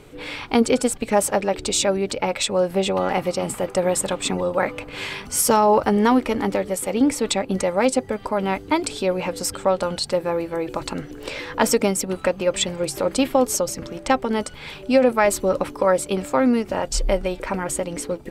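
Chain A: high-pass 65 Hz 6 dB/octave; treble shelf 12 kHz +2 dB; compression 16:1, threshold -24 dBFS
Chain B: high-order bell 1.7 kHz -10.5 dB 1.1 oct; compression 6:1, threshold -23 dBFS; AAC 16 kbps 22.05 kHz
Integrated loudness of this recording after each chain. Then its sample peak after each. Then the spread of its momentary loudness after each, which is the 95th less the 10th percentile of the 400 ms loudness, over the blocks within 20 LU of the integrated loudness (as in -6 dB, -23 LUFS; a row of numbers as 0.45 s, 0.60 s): -29.5 LUFS, -29.0 LUFS; -10.5 dBFS, -10.5 dBFS; 4 LU, 4 LU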